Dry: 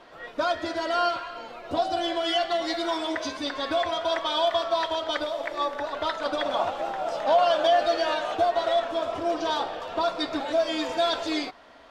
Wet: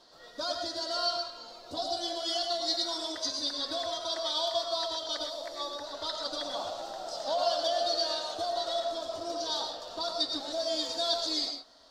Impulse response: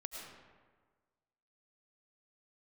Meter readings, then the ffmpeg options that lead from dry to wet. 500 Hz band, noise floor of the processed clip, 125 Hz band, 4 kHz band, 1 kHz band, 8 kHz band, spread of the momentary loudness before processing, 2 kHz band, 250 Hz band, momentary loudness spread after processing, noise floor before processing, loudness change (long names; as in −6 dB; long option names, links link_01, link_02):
−8.5 dB, −51 dBFS, can't be measured, +0.5 dB, −9.5 dB, +4.5 dB, 8 LU, −13.5 dB, −10.5 dB, 8 LU, −46 dBFS, −5.5 dB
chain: -filter_complex "[0:a]highshelf=frequency=3300:width_type=q:width=3:gain=10.5[link_01];[1:a]atrim=start_sample=2205,afade=type=out:start_time=0.18:duration=0.01,atrim=end_sample=8379[link_02];[link_01][link_02]afir=irnorm=-1:irlink=0,volume=-6dB"